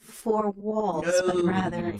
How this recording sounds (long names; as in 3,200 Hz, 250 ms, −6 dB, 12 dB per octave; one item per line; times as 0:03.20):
tremolo saw up 10 Hz, depth 75%
a shimmering, thickened sound